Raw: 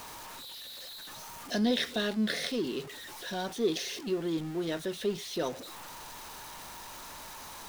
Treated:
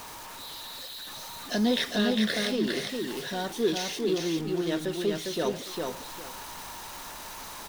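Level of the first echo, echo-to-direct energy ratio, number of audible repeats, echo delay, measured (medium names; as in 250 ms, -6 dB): -3.5 dB, -3.5 dB, 2, 404 ms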